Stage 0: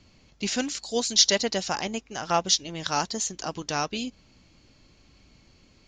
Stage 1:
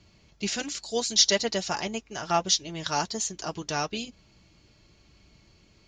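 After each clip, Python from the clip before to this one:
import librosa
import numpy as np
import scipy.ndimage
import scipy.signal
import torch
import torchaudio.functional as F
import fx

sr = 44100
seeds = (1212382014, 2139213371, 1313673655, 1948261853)

y = fx.notch_comb(x, sr, f0_hz=260.0)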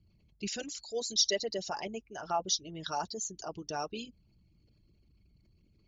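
y = fx.envelope_sharpen(x, sr, power=2.0)
y = F.gain(torch.from_numpy(y), -7.0).numpy()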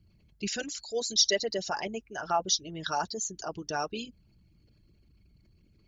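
y = fx.peak_eq(x, sr, hz=1600.0, db=6.0, octaves=0.51)
y = F.gain(torch.from_numpy(y), 3.5).numpy()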